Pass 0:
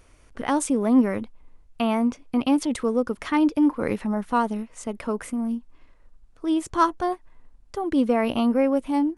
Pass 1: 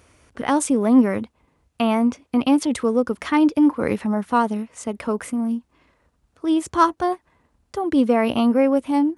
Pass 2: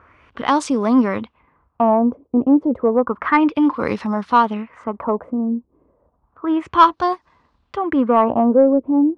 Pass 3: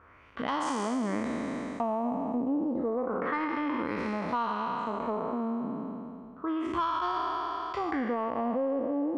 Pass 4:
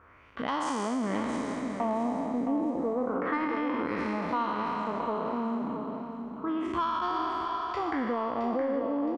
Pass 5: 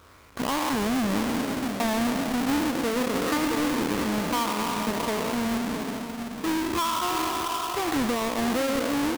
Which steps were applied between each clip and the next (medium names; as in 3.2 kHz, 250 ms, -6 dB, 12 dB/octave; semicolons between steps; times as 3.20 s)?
high-pass 60 Hz 24 dB/octave; trim +3.5 dB
peaking EQ 1.1 kHz +8.5 dB 0.68 oct; LFO low-pass sine 0.31 Hz 420–5100 Hz; saturation -1 dBFS, distortion -24 dB
spectral sustain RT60 2.29 s; peak limiter -5.5 dBFS, peak gain reduction 6 dB; compression 3:1, threshold -22 dBFS, peak gain reduction 10 dB; trim -8 dB
feedback delay 668 ms, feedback 30%, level -8 dB
square wave that keeps the level